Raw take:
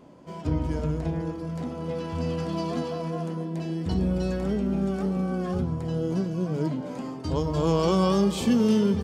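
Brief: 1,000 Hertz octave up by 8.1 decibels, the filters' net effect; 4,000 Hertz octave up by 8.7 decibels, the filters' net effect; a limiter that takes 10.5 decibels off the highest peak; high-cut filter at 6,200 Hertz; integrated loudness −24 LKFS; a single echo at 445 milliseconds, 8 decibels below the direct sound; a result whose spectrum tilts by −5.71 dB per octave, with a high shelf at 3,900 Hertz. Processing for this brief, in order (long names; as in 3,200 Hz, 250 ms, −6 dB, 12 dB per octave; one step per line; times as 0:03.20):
low-pass filter 6,200 Hz
parametric band 1,000 Hz +8.5 dB
high-shelf EQ 3,900 Hz +7 dB
parametric band 4,000 Hz +7.5 dB
brickwall limiter −18 dBFS
single-tap delay 445 ms −8 dB
level +3.5 dB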